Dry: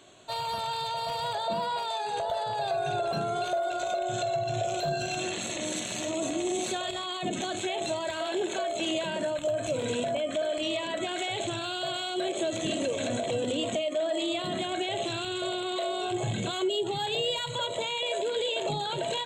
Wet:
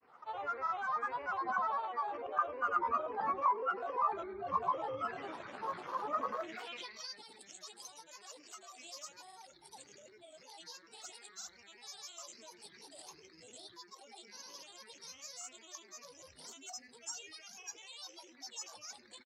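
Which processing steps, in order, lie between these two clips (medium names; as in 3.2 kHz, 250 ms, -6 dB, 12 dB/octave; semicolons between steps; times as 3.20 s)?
tilt EQ -3 dB/octave; granulator, grains 20 per s, pitch spread up and down by 12 st; speakerphone echo 100 ms, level -23 dB; band-pass sweep 1.2 kHz -> 7.3 kHz, 6.26–7.28 s; trim +1 dB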